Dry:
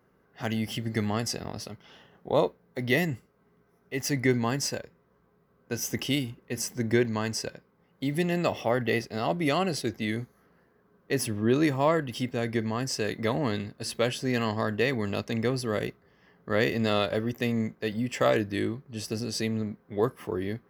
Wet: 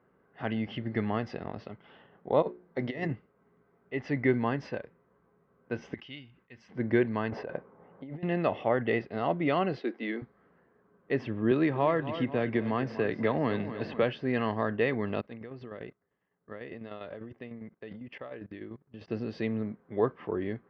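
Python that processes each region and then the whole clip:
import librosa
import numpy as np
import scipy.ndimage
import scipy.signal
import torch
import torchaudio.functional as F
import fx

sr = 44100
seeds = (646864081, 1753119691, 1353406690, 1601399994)

y = fx.chain(x, sr, fx.high_shelf_res(hz=4500.0, db=8.0, q=1.5),
    fx.hum_notches(base_hz=60, count=7),
    fx.over_compress(threshold_db=-29.0, ratio=-0.5), at=(2.42, 3.13))
y = fx.chain(y, sr, fx.tone_stack(knobs='5-5-5'),
    fx.sustainer(db_per_s=130.0), at=(5.94, 6.69))
y = fx.chain(y, sr, fx.lowpass(hz=1800.0, slope=6),
    fx.peak_eq(hz=700.0, db=8.5, octaves=1.6),
    fx.over_compress(threshold_db=-37.0, ratio=-1.0), at=(7.3, 8.23))
y = fx.chain(y, sr, fx.steep_highpass(hz=230.0, slope=36),
    fx.notch(hz=600.0, q=12.0), at=(9.78, 10.22))
y = fx.chain(y, sr, fx.echo_feedback(ms=245, feedback_pct=42, wet_db=-15),
    fx.band_squash(depth_pct=70), at=(11.51, 14.03))
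y = fx.chain(y, sr, fx.level_steps(step_db=19),
    fx.tremolo_shape(shape='saw_down', hz=10.0, depth_pct=60), at=(15.21, 19.08))
y = scipy.signal.sosfilt(scipy.signal.bessel(6, 2100.0, 'lowpass', norm='mag', fs=sr, output='sos'), y)
y = fx.low_shelf(y, sr, hz=120.0, db=-8.0)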